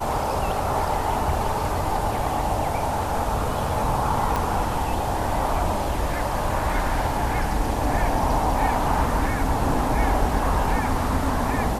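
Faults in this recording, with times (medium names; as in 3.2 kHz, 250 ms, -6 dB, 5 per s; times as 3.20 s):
4.36 s: pop -11 dBFS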